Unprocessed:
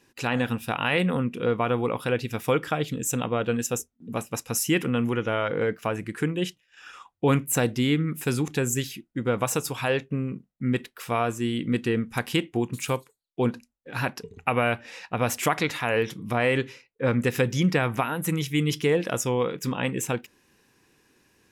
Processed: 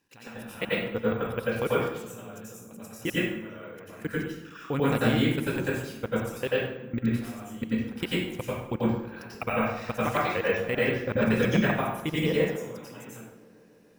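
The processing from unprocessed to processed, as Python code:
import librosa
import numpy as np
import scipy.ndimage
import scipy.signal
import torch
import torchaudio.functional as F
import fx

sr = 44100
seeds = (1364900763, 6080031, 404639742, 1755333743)

y = fx.stretch_grains(x, sr, factor=0.65, grain_ms=27.0)
y = fx.level_steps(y, sr, step_db=24)
y = fx.echo_filtered(y, sr, ms=148, feedback_pct=83, hz=3200.0, wet_db=-24.0)
y = fx.rev_plate(y, sr, seeds[0], rt60_s=0.8, hf_ratio=0.7, predelay_ms=80, drr_db=-8.0)
y = np.repeat(y[::2], 2)[:len(y)]
y = F.gain(torch.from_numpy(y), -3.5).numpy()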